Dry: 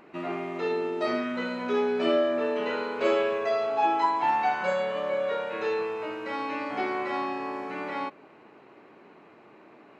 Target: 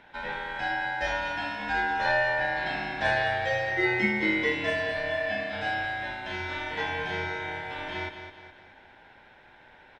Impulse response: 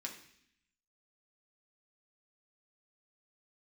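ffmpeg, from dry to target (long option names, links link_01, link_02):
-af "aeval=exprs='val(0)*sin(2*PI*1200*n/s)':channel_layout=same,aecho=1:1:209|418|627|836|1045:0.355|0.156|0.0687|0.0302|0.0133,volume=1dB"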